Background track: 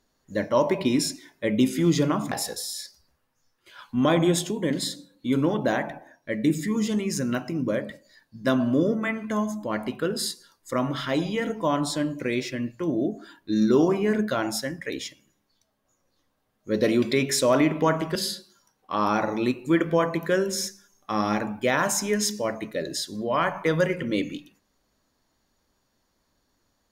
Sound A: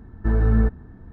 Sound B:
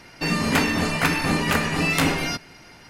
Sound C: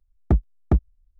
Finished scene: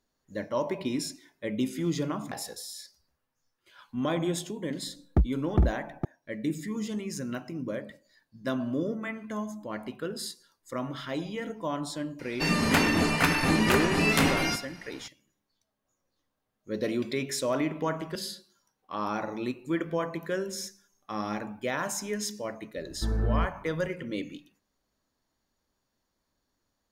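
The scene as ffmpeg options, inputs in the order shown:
ffmpeg -i bed.wav -i cue0.wav -i cue1.wav -i cue2.wav -filter_complex "[0:a]volume=-8dB[link_01];[3:a]aecho=1:1:459:0.501[link_02];[2:a]asplit=2[link_03][link_04];[link_04]adelay=100,highpass=300,lowpass=3400,asoftclip=type=hard:threshold=-12.5dB,volume=-10dB[link_05];[link_03][link_05]amix=inputs=2:normalize=0[link_06];[link_02]atrim=end=1.19,asetpts=PTS-STARTPTS,volume=-4dB,afade=type=in:duration=0.004:curve=hsin,afade=type=out:start_time=1.186:duration=0.004:curve=hsin,adelay=4860[link_07];[link_06]atrim=end=2.89,asetpts=PTS-STARTPTS,volume=-3dB,afade=type=in:duration=0.004:curve=hsin,afade=type=out:start_time=2.886:duration=0.004:curve=hsin,adelay=12190[link_08];[1:a]atrim=end=1.12,asetpts=PTS-STARTPTS,volume=-9dB,afade=type=in:duration=0.004:curve=hsin,afade=type=out:start_time=1.116:duration=0.004:curve=hsin,adelay=22770[link_09];[link_01][link_07][link_08][link_09]amix=inputs=4:normalize=0" out.wav

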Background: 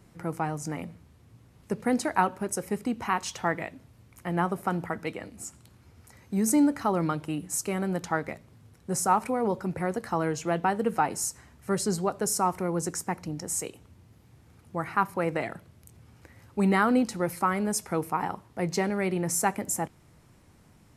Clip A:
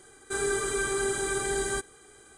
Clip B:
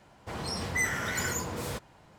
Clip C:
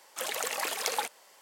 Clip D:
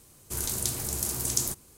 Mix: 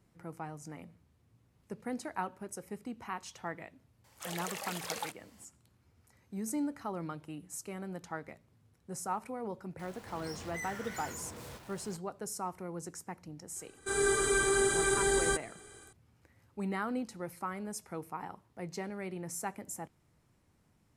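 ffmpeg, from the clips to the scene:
ffmpeg -i bed.wav -i cue0.wav -i cue1.wav -i cue2.wav -filter_complex "[0:a]volume=-12.5dB[link_01];[2:a]aeval=exprs='val(0)+0.5*0.02*sgn(val(0))':channel_layout=same[link_02];[1:a]dynaudnorm=framelen=250:gausssize=3:maxgain=7.5dB[link_03];[3:a]atrim=end=1.41,asetpts=PTS-STARTPTS,volume=-8dB,afade=type=in:duration=0.004:curve=hsin,afade=type=out:start_time=1.406:duration=0.004:curve=hsin,adelay=4040[link_04];[link_02]atrim=end=2.18,asetpts=PTS-STARTPTS,volume=-15dB,afade=type=in:duration=0.004:curve=hsin,afade=type=out:start_time=2.176:duration=0.004:curve=hsin,adelay=9790[link_05];[link_03]atrim=end=2.37,asetpts=PTS-STARTPTS,volume=-7dB,afade=type=in:duration=0.004:curve=hsin,afade=type=out:start_time=2.366:duration=0.004:curve=hsin,adelay=13560[link_06];[link_01][link_04][link_05][link_06]amix=inputs=4:normalize=0" out.wav

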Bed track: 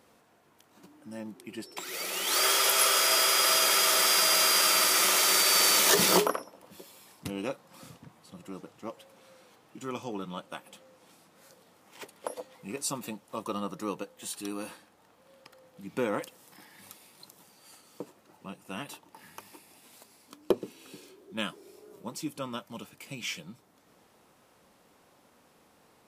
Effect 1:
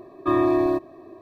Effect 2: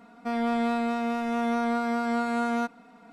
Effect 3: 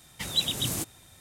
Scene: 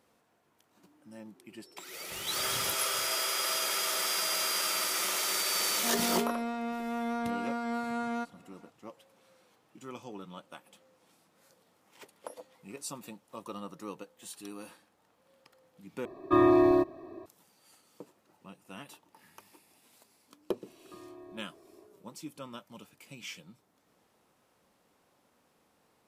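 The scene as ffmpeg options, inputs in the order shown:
ffmpeg -i bed.wav -i cue0.wav -i cue1.wav -i cue2.wav -filter_complex "[1:a]asplit=2[link_01][link_02];[0:a]volume=-7.5dB[link_03];[3:a]aecho=1:1:422:0.266[link_04];[link_02]acompressor=threshold=-33dB:ratio=6:attack=3.2:release=140:knee=1:detection=peak[link_05];[link_03]asplit=2[link_06][link_07];[link_06]atrim=end=16.054[link_08];[link_01]atrim=end=1.21,asetpts=PTS-STARTPTS,volume=-2dB[link_09];[link_07]atrim=start=17.256[link_10];[link_04]atrim=end=1.2,asetpts=PTS-STARTPTS,volume=-13dB,afade=type=in:duration=0.004:curve=hsin,afade=type=out:start_time=1.196:duration=0.004:curve=hsin,adelay=1910[link_11];[2:a]atrim=end=3.12,asetpts=PTS-STARTPTS,volume=-7dB,afade=type=in:duration=0.004:curve=hsin,afade=type=out:start_time=3.116:duration=0.004:curve=hsin,adelay=5580[link_12];[link_05]atrim=end=1.21,asetpts=PTS-STARTPTS,volume=-15dB,afade=type=in:duration=0.004:curve=hsin,afade=type=out:start_time=1.206:duration=0.004:curve=hsin,adelay=20660[link_13];[link_08][link_09]acrossfade=duration=0.004:curve1=hsin:curve2=hsin[link_14];[link_14][link_10]acrossfade=duration=0.004:curve1=hsin:curve2=hsin[link_15];[link_15][link_11][link_12][link_13]amix=inputs=4:normalize=0" out.wav

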